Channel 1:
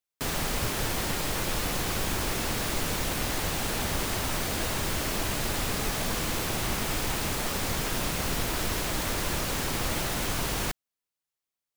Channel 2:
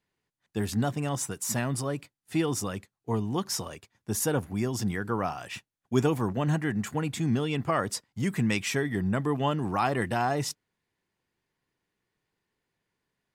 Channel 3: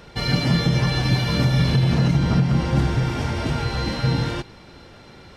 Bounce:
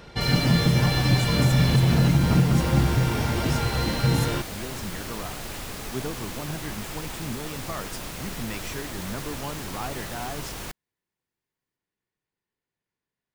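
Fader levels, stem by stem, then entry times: -6.0 dB, -8.0 dB, -1.0 dB; 0.00 s, 0.00 s, 0.00 s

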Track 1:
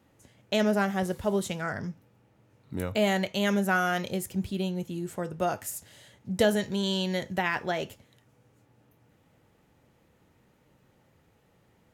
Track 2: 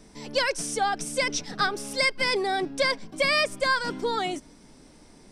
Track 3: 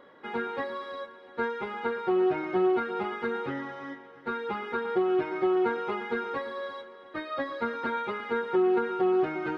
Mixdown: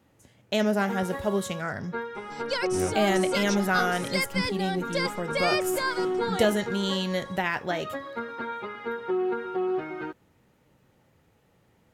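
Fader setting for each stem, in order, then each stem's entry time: +0.5 dB, -5.0 dB, -3.0 dB; 0.00 s, 2.15 s, 0.55 s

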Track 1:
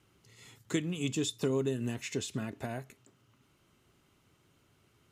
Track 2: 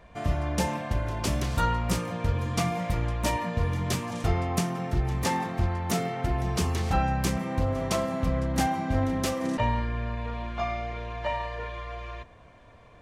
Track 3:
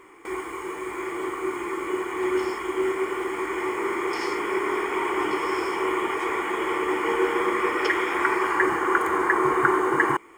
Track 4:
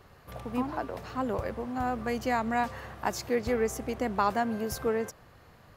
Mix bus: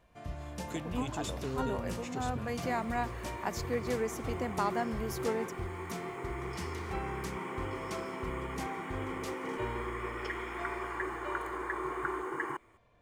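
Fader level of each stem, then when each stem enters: -7.5 dB, -14.0 dB, -15.0 dB, -5.5 dB; 0.00 s, 0.00 s, 2.40 s, 0.40 s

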